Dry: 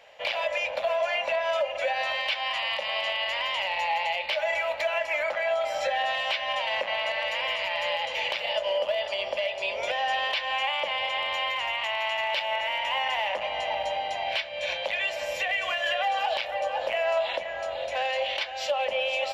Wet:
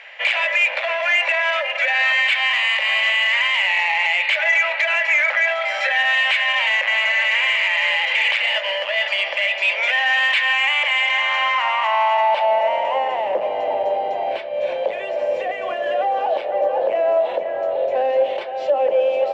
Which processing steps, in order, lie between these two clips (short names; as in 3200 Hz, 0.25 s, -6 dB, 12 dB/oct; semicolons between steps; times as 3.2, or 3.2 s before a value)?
in parallel at -3.5 dB: hard clip -31.5 dBFS, distortion -7 dB; on the sum: band-pass sweep 2000 Hz -> 410 Hz, 10.99–13.29; soft clip -18.5 dBFS, distortion -29 dB; maximiser +24 dB; gain -9 dB